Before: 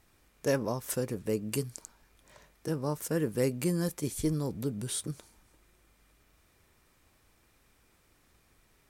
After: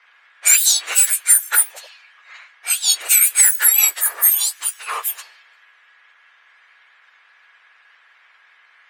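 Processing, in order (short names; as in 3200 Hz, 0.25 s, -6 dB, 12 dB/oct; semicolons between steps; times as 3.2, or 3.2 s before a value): spectrum mirrored in octaves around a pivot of 2000 Hz; low-pass opened by the level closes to 1900 Hz, open at -32.5 dBFS; HPF 1500 Hz 24 dB/oct; maximiser +29 dB; gain -1 dB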